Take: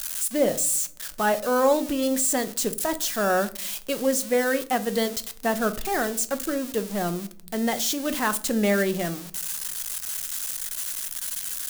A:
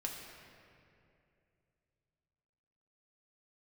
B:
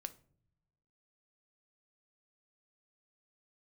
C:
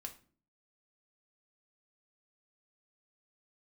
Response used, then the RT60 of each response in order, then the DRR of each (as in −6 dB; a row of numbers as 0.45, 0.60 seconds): B; 2.6 s, non-exponential decay, 0.45 s; −1.0, 10.5, 3.0 decibels